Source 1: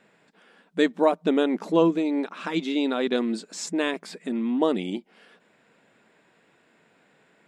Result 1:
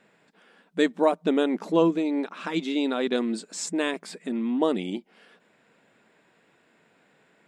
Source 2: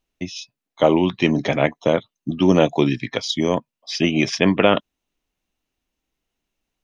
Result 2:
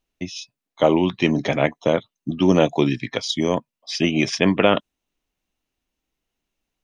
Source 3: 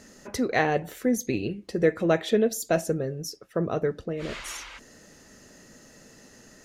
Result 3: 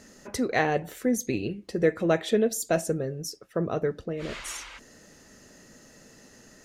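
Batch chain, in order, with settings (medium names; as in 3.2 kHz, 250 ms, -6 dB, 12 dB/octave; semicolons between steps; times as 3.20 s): dynamic bell 8.4 kHz, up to +6 dB, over -53 dBFS, Q 2.6; trim -1 dB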